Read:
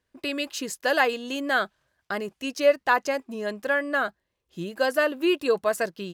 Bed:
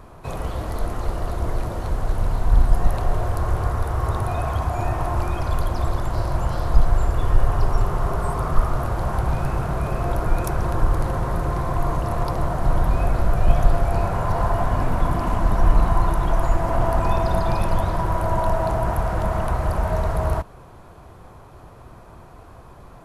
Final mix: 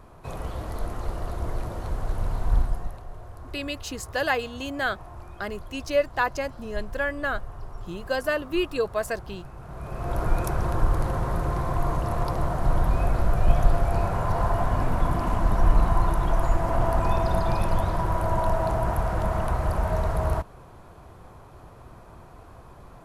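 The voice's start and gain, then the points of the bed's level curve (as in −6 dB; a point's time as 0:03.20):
3.30 s, −3.0 dB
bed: 0:02.56 −5.5 dB
0:03.03 −19 dB
0:09.56 −19 dB
0:10.21 −3 dB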